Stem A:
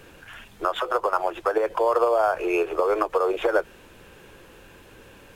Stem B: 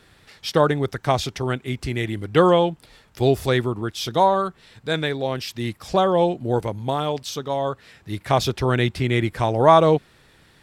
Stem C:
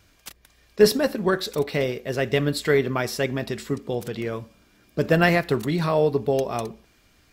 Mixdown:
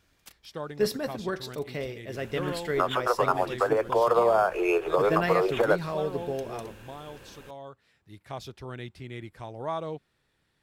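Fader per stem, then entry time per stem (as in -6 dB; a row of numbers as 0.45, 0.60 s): -1.5, -19.0, -10.0 dB; 2.15, 0.00, 0.00 s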